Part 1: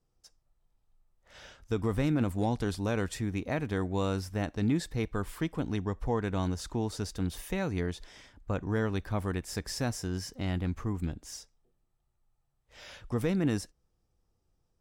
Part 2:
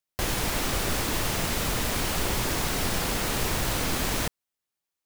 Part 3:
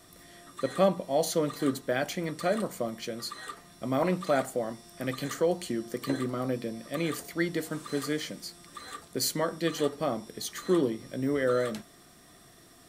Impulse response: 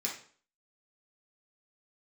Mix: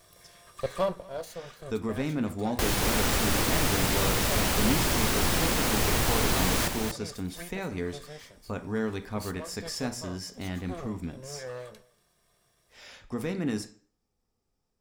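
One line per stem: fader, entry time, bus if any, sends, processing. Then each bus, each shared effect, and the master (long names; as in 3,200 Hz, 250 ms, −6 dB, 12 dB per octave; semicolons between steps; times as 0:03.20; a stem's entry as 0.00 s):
−3.0 dB, 0.00 s, send −6.5 dB, no echo send, no processing
+0.5 dB, 2.40 s, no send, echo send −6 dB, no processing
0:00.77 −1.5 dB → 0:01.31 −12.5 dB, 0.00 s, no send, echo send −23.5 dB, lower of the sound and its delayed copy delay 1.8 ms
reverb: on, RT60 0.45 s, pre-delay 3 ms
echo: single-tap delay 236 ms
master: no processing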